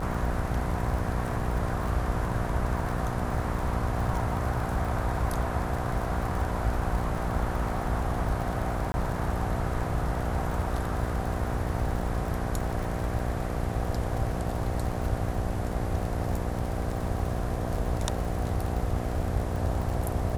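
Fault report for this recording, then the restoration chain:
mains buzz 60 Hz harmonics 13 −33 dBFS
surface crackle 60 per second −33 dBFS
0:08.92–0:08.94: drop-out 20 ms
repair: click removal
hum removal 60 Hz, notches 13
repair the gap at 0:08.92, 20 ms

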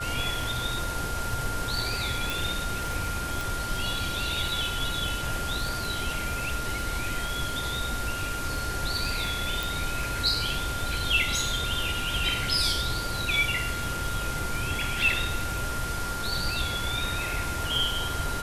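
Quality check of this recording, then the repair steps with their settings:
surface crackle 26 per second −33 dBFS
whistle 1,400 Hz −33 dBFS
0:02.30: click
0:03.41: click
0:09.63: click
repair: click removal
notch filter 1,400 Hz, Q 30

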